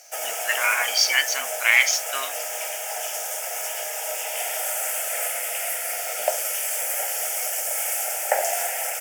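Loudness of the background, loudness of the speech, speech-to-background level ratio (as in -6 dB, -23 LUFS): -25.5 LUFS, -20.5 LUFS, 5.0 dB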